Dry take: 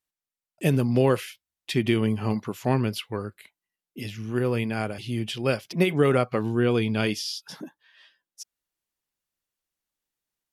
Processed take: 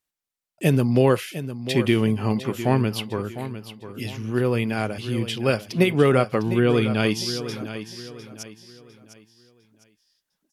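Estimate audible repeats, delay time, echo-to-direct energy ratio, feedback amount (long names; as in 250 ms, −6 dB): 3, 704 ms, −11.5 dB, 35%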